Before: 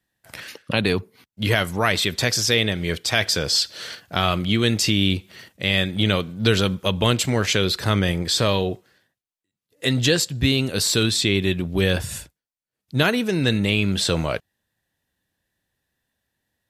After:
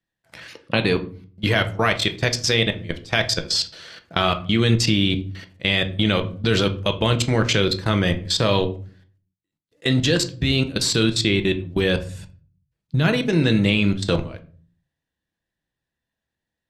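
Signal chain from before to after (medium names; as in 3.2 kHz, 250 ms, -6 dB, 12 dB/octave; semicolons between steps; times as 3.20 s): 12.06–13.13 s: peaking EQ 150 Hz +10 dB 0.8 oct; level held to a coarse grid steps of 22 dB; distance through air 51 m; reverberation RT60 0.40 s, pre-delay 6 ms, DRR 7 dB; trim +3.5 dB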